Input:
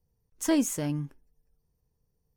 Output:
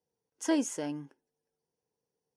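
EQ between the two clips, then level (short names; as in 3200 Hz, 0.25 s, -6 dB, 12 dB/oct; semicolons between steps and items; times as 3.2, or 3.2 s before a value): speaker cabinet 400–9300 Hz, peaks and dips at 630 Hz -4 dB, 1200 Hz -9 dB, 2300 Hz -7 dB, 3900 Hz -7 dB, 7700 Hz -5 dB; high shelf 3500 Hz -5.5 dB; notch 1800 Hz, Q 23; +2.5 dB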